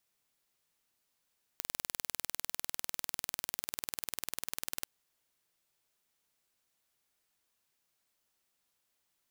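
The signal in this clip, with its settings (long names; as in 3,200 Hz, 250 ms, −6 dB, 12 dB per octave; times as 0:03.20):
impulse train 20.1 per second, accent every 0, −7.5 dBFS 3.24 s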